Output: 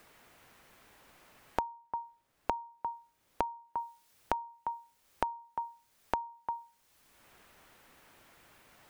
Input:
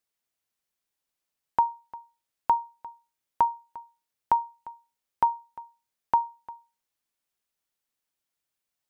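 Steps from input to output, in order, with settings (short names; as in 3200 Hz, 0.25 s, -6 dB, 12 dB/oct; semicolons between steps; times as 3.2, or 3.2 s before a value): compressor 4:1, threshold -30 dBFS, peak gain reduction 11 dB; 1.62–3.77 high shelf 2200 Hz -12 dB; three-band squash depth 100%; gain +3 dB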